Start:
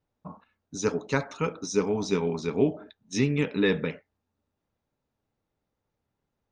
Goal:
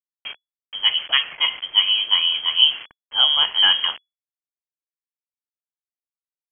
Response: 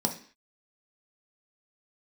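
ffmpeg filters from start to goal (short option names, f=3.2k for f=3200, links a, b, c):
-filter_complex "[0:a]asettb=1/sr,asplit=3[a][b][c];[a]atrim=end=0.834[d];[b]atrim=start=0.83:end=2.24,asetpts=PTS-STARTPTS,afade=t=in:d=0.004:c=qsin,afade=t=out:st=1.406:d=0.004:c=qsin,bandreject=f=262.2:t=h:w=4,bandreject=f=524.4:t=h:w=4,bandreject=f=786.6:t=h:w=4,bandreject=f=1.0488k:t=h:w=4,bandreject=f=1.311k:t=h:w=4,bandreject=f=1.5732k:t=h:w=4,bandreject=f=1.8354k:t=h:w=4,bandreject=f=2.0976k:t=h:w=4,bandreject=f=2.3598k:t=h:w=4,bandreject=f=2.622k:t=h:w=4,bandreject=f=2.8842k:t=h:w=4,bandreject=f=3.1464k:t=h:w=4,bandreject=f=3.4086k:t=h:w=4,bandreject=f=3.6708k:t=h:w=4,bandreject=f=3.933k:t=h:w=4,bandreject=f=4.1952k:t=h:w=4,bandreject=f=4.4574k:t=h:w=4[e];[c]atrim=start=2.236[f];[d][e]acrossfade=d=0.004:c1=hsin:c2=qsin[g];[g][f]acrossfade=d=0.004:c1=qsin:c2=hsin,acrusher=bits=6:mix=0:aa=0.000001,lowpass=f=2.9k:t=q:w=0.5098,lowpass=f=2.9k:t=q:w=0.6013,lowpass=f=2.9k:t=q:w=0.9,lowpass=f=2.9k:t=q:w=2.563,afreqshift=-3400,volume=7.5dB"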